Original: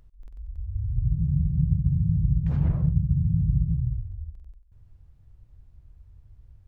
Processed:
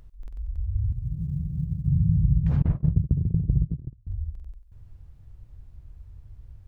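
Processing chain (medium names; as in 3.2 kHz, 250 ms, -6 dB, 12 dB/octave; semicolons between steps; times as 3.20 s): 0.92–1.88 s: bass shelf 290 Hz -12 dB; 2.62–4.07 s: gate -21 dBFS, range -32 dB; in parallel at -1 dB: compression, threshold -31 dBFS, peak gain reduction 14 dB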